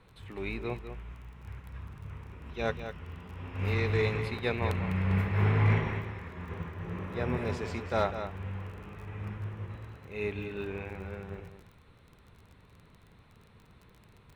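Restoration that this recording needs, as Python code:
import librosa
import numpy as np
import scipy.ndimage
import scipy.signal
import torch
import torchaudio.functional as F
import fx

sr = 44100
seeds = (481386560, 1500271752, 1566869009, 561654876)

y = fx.fix_declip(x, sr, threshold_db=-16.0)
y = fx.fix_declick_ar(y, sr, threshold=6.5)
y = fx.fix_echo_inverse(y, sr, delay_ms=201, level_db=-9.5)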